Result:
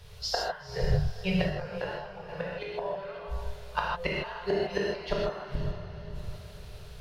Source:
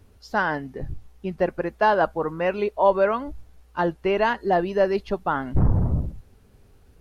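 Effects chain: Chebyshev band-stop 190–410 Hz, order 4; peaking EQ 3.8 kHz +11 dB 1.3 oct; de-hum 103 Hz, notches 15; inverted gate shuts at -19 dBFS, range -29 dB; echo that smears into a reverb 486 ms, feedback 48%, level -12 dB; gated-style reverb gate 180 ms flat, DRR -4 dB; 1.49–2.28 s: detune thickener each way 22 cents -> 33 cents; trim +3 dB

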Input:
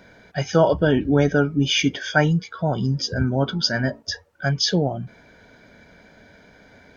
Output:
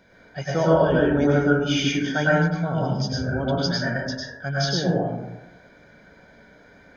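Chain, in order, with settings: plate-style reverb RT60 0.98 s, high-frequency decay 0.3×, pre-delay 90 ms, DRR -6 dB; trim -7.5 dB

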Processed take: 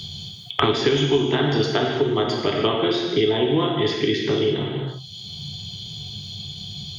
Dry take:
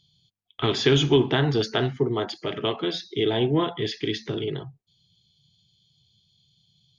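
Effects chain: gated-style reverb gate 370 ms falling, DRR 0 dB; three bands compressed up and down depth 100%

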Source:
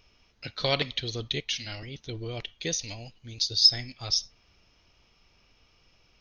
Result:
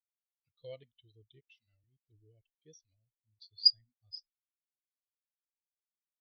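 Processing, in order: pitch shift -1 st; spectral contrast expander 2.5:1; trim -4.5 dB

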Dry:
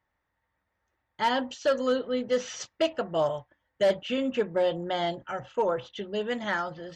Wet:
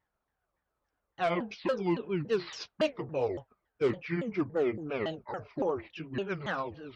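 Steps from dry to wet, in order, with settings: sawtooth pitch modulation -9 st, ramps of 281 ms; vibrato 5.3 Hz 74 cents; trim -3 dB

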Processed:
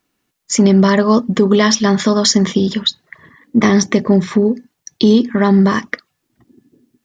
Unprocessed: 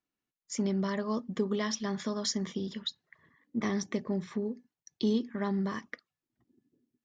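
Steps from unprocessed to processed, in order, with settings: loudness maximiser +21.5 dB; trim -1 dB

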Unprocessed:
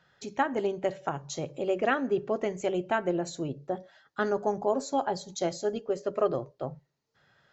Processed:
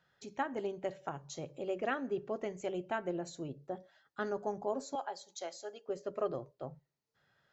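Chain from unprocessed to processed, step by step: 4.95–5.88 s: high-pass 620 Hz 12 dB/octave; trim -8.5 dB

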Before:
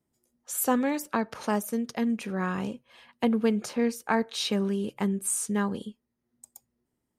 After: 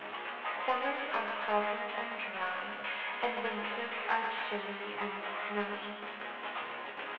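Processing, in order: one-bit delta coder 16 kbps, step -26.5 dBFS; high-pass 620 Hz 12 dB/octave; gate with hold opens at -28 dBFS; transient shaper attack +7 dB, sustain +3 dB; saturation -12 dBFS, distortion -24 dB; chord resonator C#2 fifth, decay 0.34 s; feedback delay 138 ms, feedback 58%, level -7.5 dB; trim +6 dB

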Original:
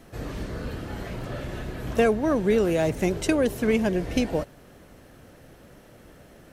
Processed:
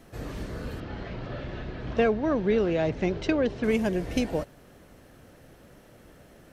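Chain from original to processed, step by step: 0.80–3.64 s: low-pass 4.8 kHz 24 dB/octave; trim -2.5 dB

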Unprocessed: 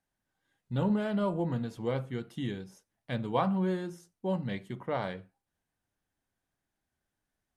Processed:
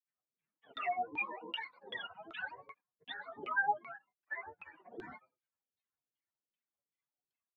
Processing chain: spectrum inverted on a logarithmic axis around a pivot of 540 Hz; differentiator; comb 6.4 ms, depth 90%; granulator 100 ms, pitch spread up and down by 12 st; LFO low-pass saw down 2.6 Hz 330–3200 Hz; trim +4.5 dB

